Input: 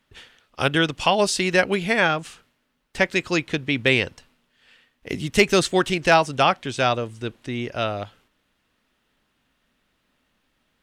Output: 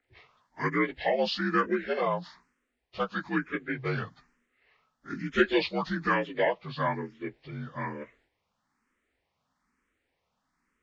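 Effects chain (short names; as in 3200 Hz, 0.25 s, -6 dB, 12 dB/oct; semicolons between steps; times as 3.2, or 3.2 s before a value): inharmonic rescaling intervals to 82%; endless phaser +1.1 Hz; gain -3.5 dB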